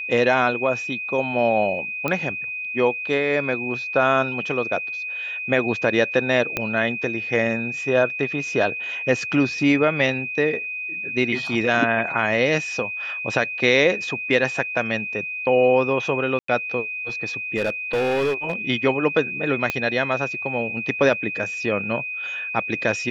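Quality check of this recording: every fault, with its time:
whistle 2,500 Hz −27 dBFS
0:02.08: click −10 dBFS
0:06.57: click −8 dBFS
0:16.39–0:16.48: drop-out 94 ms
0:17.56–0:18.53: clipping −18 dBFS
0:19.70: click −8 dBFS

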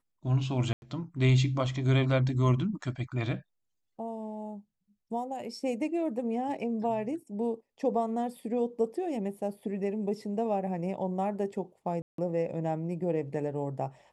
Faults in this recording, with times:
0:00.73–0:00.82: drop-out 91 ms
0:12.02–0:12.18: drop-out 163 ms

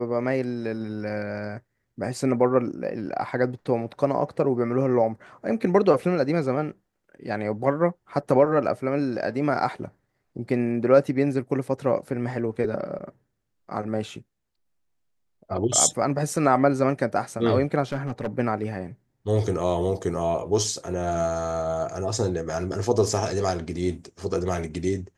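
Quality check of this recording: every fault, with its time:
0:17.83–0:18.27: clipping −21.5 dBFS

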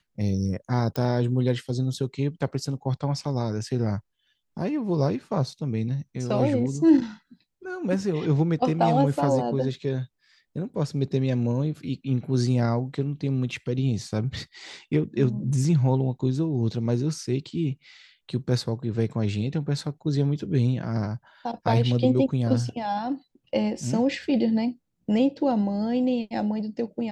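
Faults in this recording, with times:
0:00.96: click −14 dBFS

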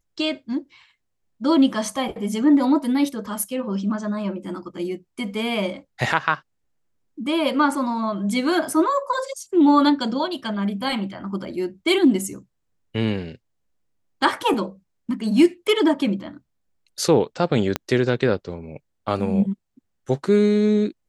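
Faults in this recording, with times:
0:17.76: click −7 dBFS

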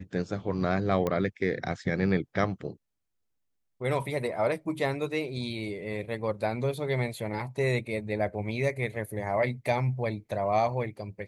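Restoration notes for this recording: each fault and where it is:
0:01.07: click −16 dBFS

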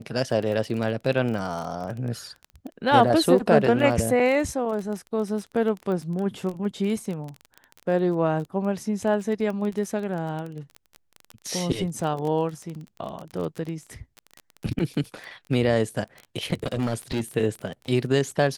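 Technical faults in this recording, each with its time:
surface crackle 18 per second −29 dBFS
0:16.64–0:17.21: clipping −20 dBFS

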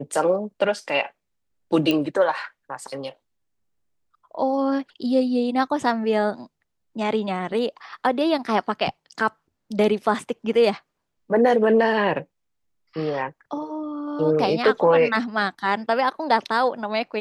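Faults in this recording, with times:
0:01.91: click −10 dBFS

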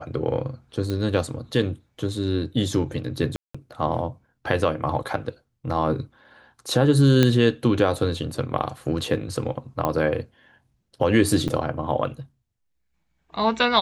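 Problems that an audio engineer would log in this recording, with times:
0:00.90: click −16 dBFS
0:03.36–0:03.54: drop-out 185 ms
0:07.23: click −5 dBFS
0:09.85: click −11 dBFS
0:11.48–0:11.49: drop-out 6.7 ms

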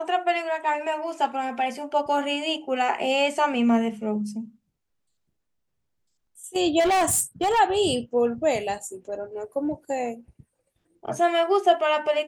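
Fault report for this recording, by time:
0:06.79–0:07.60: clipping −18.5 dBFS

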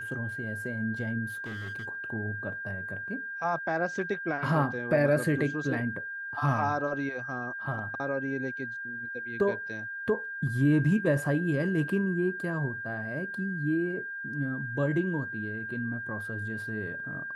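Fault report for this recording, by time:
whistle 1,600 Hz −35 dBFS
0:01.28–0:01.88: clipping −34 dBFS

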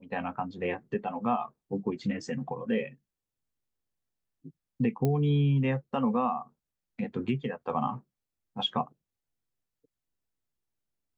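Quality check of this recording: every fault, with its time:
0:05.05: click −16 dBFS

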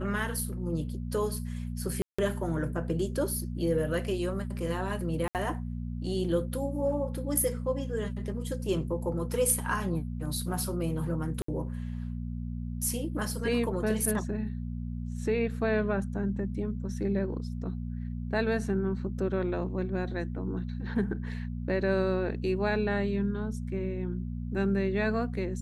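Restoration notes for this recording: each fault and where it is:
mains hum 60 Hz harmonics 4 −35 dBFS
0:02.02–0:02.19: drop-out 165 ms
0:05.28–0:05.35: drop-out 68 ms
0:11.42–0:11.48: drop-out 64 ms

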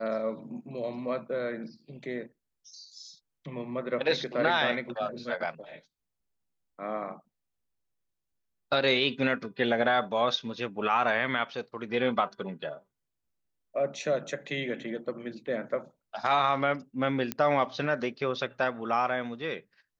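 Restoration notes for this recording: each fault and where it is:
0:17.32: click −13 dBFS

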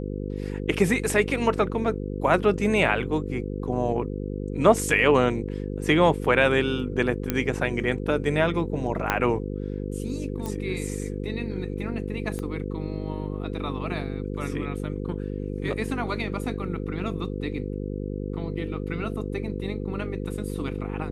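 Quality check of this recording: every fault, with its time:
mains buzz 50 Hz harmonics 10 −31 dBFS
0:07.30: click −9 dBFS
0:09.10: click −7 dBFS
0:10.46: click −18 dBFS
0:12.39: click −20 dBFS

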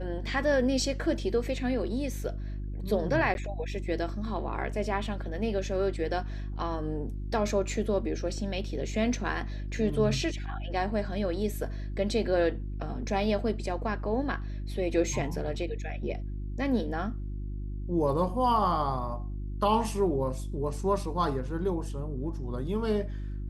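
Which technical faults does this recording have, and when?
mains hum 50 Hz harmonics 7 −35 dBFS
0:03.34–0:03.35: drop-out 11 ms

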